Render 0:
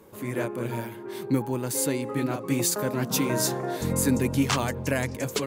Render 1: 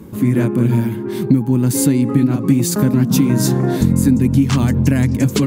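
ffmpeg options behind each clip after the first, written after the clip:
-af "lowshelf=f=350:t=q:w=1.5:g=12,acompressor=threshold=-18dB:ratio=6,volume=8dB"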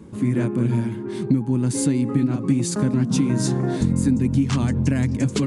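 -af "aresample=22050,aresample=44100,volume=-6dB"

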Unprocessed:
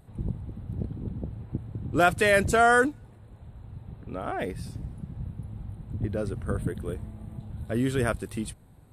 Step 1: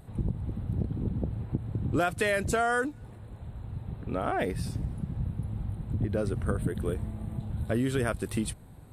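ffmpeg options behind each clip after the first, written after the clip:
-af "acompressor=threshold=-29dB:ratio=6,volume=4.5dB"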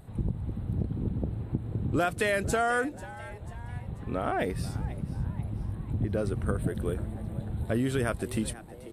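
-filter_complex "[0:a]asplit=5[a][b][c][d][e];[b]adelay=490,afreqshift=120,volume=-17.5dB[f];[c]adelay=980,afreqshift=240,volume=-23.9dB[g];[d]adelay=1470,afreqshift=360,volume=-30.3dB[h];[e]adelay=1960,afreqshift=480,volume=-36.6dB[i];[a][f][g][h][i]amix=inputs=5:normalize=0"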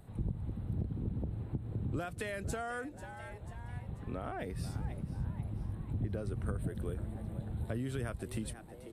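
-filter_complex "[0:a]acrossover=split=150[a][b];[b]acompressor=threshold=-35dB:ratio=2.5[c];[a][c]amix=inputs=2:normalize=0,volume=-5dB"

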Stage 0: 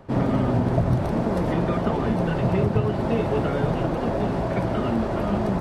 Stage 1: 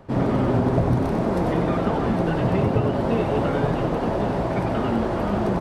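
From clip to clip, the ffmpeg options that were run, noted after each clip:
-filter_complex "[0:a]asplit=7[a][b][c][d][e][f][g];[b]adelay=95,afreqshift=140,volume=-7dB[h];[c]adelay=190,afreqshift=280,volume=-13.4dB[i];[d]adelay=285,afreqshift=420,volume=-19.8dB[j];[e]adelay=380,afreqshift=560,volume=-26.1dB[k];[f]adelay=475,afreqshift=700,volume=-32.5dB[l];[g]adelay=570,afreqshift=840,volume=-38.9dB[m];[a][h][i][j][k][l][m]amix=inputs=7:normalize=0"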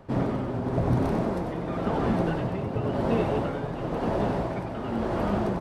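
-af "tremolo=f=0.95:d=0.59,volume=-2.5dB"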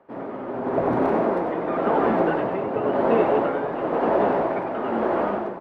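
-filter_complex "[0:a]acrossover=split=260 2500:gain=0.0708 1 0.1[a][b][c];[a][b][c]amix=inputs=3:normalize=0,dynaudnorm=f=150:g=7:m=12.5dB,volume=-3.5dB"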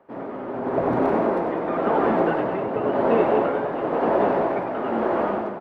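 -af "aecho=1:1:201:0.251"

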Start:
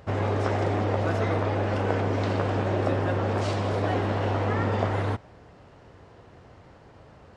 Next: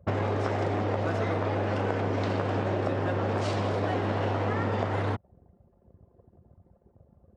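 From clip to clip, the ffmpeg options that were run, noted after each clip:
-af "anlmdn=0.398,highpass=81,acompressor=threshold=-32dB:ratio=5,volume=6.5dB"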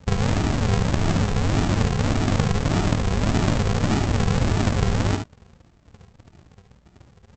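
-af "aresample=16000,acrusher=samples=42:mix=1:aa=0.000001:lfo=1:lforange=25.2:lforate=1.7,aresample=44100,aecho=1:1:55|72:0.299|0.376,volume=7dB"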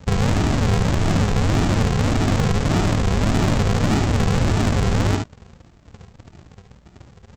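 -af "asoftclip=type=tanh:threshold=-18dB,volume=5.5dB"

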